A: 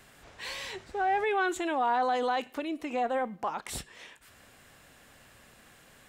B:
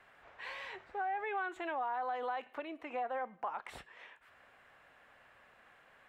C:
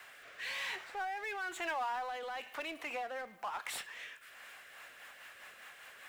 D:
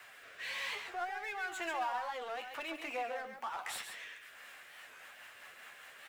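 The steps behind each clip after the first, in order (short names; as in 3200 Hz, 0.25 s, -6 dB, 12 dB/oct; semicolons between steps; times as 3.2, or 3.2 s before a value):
three-band isolator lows -14 dB, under 520 Hz, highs -22 dB, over 2600 Hz; compressor 4:1, threshold -33 dBFS, peak gain reduction 8 dB; gain -1.5 dB
rotary speaker horn 1 Hz, later 5 Hz, at 4.14; tilt +4.5 dB/oct; power-law curve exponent 0.7; gain -1 dB
flange 0.77 Hz, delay 7.9 ms, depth 6.7 ms, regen +35%; on a send: echo 0.137 s -7.5 dB; on the sum: record warp 45 rpm, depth 160 cents; gain +3 dB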